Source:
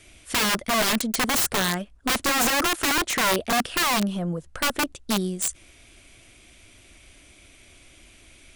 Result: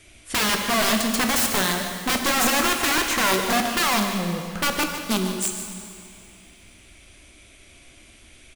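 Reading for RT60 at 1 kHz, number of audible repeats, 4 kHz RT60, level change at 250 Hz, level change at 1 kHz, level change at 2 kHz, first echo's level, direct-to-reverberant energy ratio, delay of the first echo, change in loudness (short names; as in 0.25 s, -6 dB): 2.4 s, 1, 2.2 s, +2.0 dB, +2.0 dB, +1.5 dB, -11.0 dB, 3.0 dB, 0.148 s, +1.5 dB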